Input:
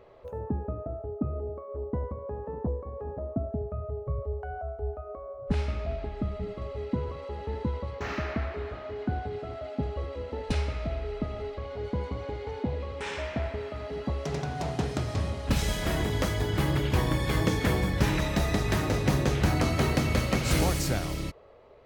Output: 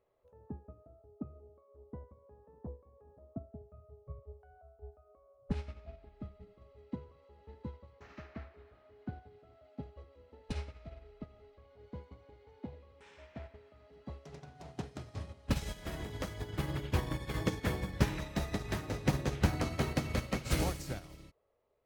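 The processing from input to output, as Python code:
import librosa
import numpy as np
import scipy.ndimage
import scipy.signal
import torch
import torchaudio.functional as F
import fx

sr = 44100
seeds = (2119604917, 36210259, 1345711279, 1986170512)

y = fx.upward_expand(x, sr, threshold_db=-34.0, expansion=2.5)
y = y * librosa.db_to_amplitude(-2.0)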